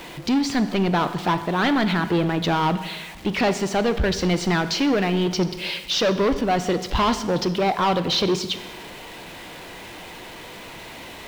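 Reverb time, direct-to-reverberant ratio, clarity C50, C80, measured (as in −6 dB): 1.2 s, 11.0 dB, 12.0 dB, 13.5 dB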